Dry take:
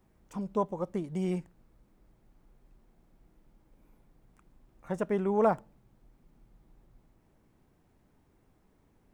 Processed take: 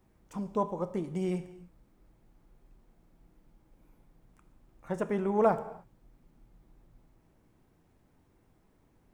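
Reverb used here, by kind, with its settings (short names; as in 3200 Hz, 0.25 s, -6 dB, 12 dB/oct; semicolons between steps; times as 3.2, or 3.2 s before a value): non-linear reverb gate 0.33 s falling, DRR 10.5 dB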